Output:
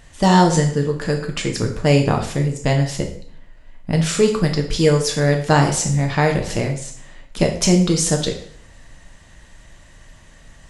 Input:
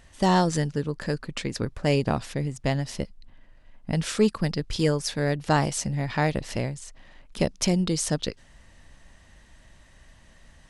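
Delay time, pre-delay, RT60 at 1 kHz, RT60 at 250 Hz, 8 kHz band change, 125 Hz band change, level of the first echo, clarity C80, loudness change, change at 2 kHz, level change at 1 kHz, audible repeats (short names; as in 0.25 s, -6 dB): none, 6 ms, 0.60 s, 0.70 s, +9.5 dB, +9.0 dB, none, 12.0 dB, +8.0 dB, +7.5 dB, +7.5 dB, none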